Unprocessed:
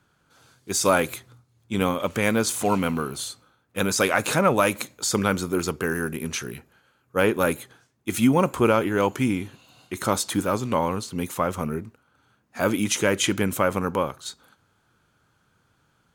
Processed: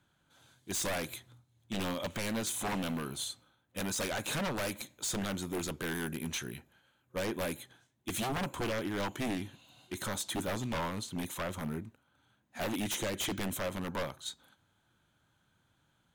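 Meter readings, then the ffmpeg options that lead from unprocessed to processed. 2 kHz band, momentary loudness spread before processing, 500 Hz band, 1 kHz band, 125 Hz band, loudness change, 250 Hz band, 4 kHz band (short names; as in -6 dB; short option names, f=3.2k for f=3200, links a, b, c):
-11.5 dB, 13 LU, -14.5 dB, -13.5 dB, -11.0 dB, -12.0 dB, -12.0 dB, -7.5 dB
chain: -af "alimiter=limit=-10dB:level=0:latency=1:release=394,superequalizer=7b=0.562:10b=0.631:13b=1.58:14b=0.631,aeval=exprs='0.0794*(abs(mod(val(0)/0.0794+3,4)-2)-1)':c=same,volume=-6.5dB"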